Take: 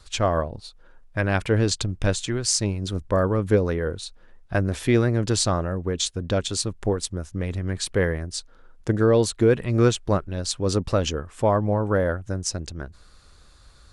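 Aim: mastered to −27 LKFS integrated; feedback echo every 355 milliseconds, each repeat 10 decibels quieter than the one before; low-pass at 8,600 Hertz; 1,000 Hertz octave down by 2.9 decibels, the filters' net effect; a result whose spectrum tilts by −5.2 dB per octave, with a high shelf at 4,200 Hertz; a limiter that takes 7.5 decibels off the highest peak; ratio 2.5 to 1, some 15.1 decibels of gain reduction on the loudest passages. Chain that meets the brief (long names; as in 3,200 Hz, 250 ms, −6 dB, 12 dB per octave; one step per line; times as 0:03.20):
low-pass filter 8,600 Hz
parametric band 1,000 Hz −3.5 dB
high-shelf EQ 4,200 Hz −6.5 dB
downward compressor 2.5 to 1, threshold −38 dBFS
brickwall limiter −28.5 dBFS
repeating echo 355 ms, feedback 32%, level −10 dB
level +12 dB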